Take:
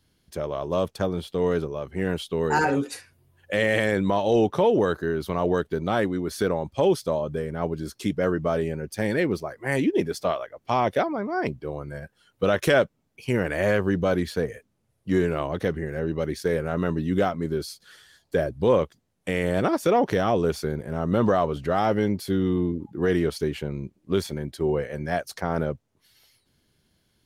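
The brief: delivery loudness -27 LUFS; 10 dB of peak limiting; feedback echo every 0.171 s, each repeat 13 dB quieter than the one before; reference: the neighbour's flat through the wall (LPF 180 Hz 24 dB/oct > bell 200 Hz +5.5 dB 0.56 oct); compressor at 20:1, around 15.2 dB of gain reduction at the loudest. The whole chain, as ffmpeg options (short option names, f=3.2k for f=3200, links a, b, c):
-af "acompressor=threshold=-31dB:ratio=20,alimiter=level_in=2.5dB:limit=-24dB:level=0:latency=1,volume=-2.5dB,lowpass=f=180:w=0.5412,lowpass=f=180:w=1.3066,equalizer=f=200:t=o:w=0.56:g=5.5,aecho=1:1:171|342|513:0.224|0.0493|0.0108,volume=17dB"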